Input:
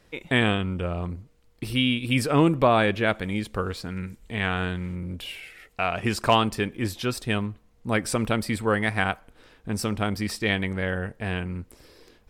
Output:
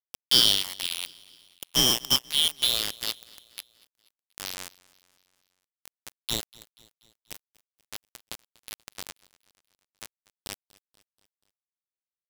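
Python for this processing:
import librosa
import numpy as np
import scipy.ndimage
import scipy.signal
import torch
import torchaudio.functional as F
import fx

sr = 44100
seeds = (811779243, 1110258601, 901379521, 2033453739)

y = fx.band_shuffle(x, sr, order='3412')
y = fx.peak_eq(y, sr, hz=8500.0, db=fx.steps((0.0, 4.5), (2.16, -7.0), (4.69, -14.0)), octaves=2.4)
y = np.where(np.abs(y) >= 10.0 ** (-18.5 / 20.0), y, 0.0)
y = fx.echo_feedback(y, sr, ms=241, feedback_pct=55, wet_db=-23.0)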